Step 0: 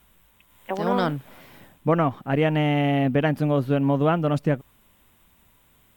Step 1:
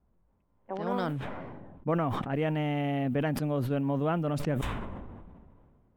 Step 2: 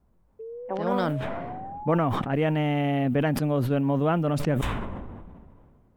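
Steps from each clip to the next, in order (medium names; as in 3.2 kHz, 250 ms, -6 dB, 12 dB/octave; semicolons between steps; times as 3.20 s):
level-controlled noise filter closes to 640 Hz, open at -18.5 dBFS; peaking EQ 4 kHz -2.5 dB 2.2 oct; decay stretcher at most 28 dB/s; trim -8.5 dB
painted sound rise, 0.39–1.98 s, 440–900 Hz -43 dBFS; trim +5 dB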